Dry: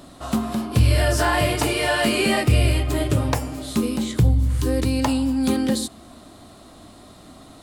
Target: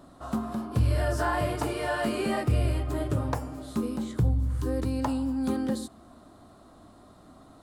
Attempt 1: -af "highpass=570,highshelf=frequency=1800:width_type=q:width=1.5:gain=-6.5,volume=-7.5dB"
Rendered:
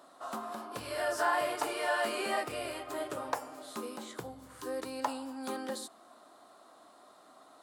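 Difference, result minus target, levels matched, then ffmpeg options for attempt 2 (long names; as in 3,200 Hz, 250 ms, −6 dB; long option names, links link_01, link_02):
500 Hz band +3.0 dB
-af "highshelf=frequency=1800:width_type=q:width=1.5:gain=-6.5,volume=-7.5dB"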